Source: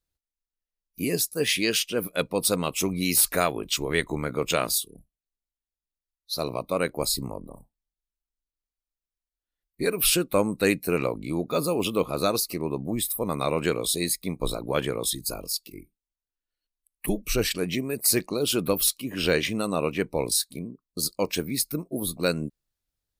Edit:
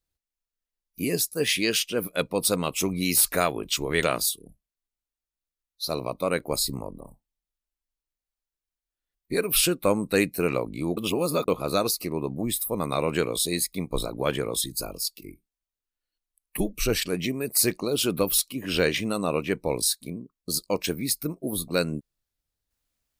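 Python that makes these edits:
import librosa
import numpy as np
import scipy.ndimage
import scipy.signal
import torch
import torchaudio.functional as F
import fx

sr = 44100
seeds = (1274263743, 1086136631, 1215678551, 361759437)

y = fx.edit(x, sr, fx.cut(start_s=4.03, length_s=0.49),
    fx.reverse_span(start_s=11.46, length_s=0.51), tone=tone)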